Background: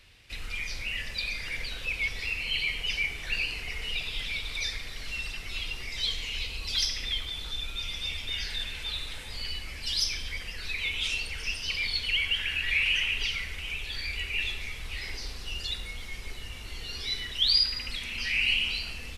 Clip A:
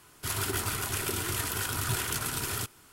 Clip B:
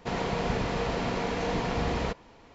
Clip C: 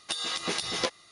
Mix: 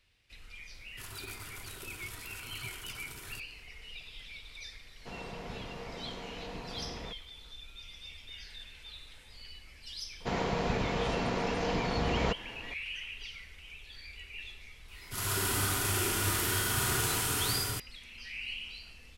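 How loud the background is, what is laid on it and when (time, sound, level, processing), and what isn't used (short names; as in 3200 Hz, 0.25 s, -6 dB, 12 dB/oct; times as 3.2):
background -14 dB
0.74 add A -15 dB
5 add B -14 dB
10.2 add B -2 dB + vocal rider
14.88 add A -6.5 dB + Schroeder reverb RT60 2.5 s, combs from 31 ms, DRR -7 dB
not used: C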